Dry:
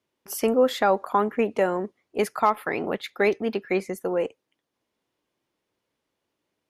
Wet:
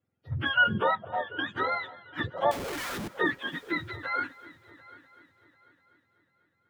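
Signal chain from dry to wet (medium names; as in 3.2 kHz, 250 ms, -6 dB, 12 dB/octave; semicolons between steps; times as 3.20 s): spectrum inverted on a logarithmic axis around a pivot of 860 Hz; treble shelf 4.3 kHz -5.5 dB; small resonant body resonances 510/1400 Hz, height 7 dB; 0.95–1.39 s: tape spacing loss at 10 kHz 44 dB; 2.51–3.08 s: Schmitt trigger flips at -48.5 dBFS; multi-head delay 247 ms, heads first and third, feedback 48%, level -21.5 dB; trim -3.5 dB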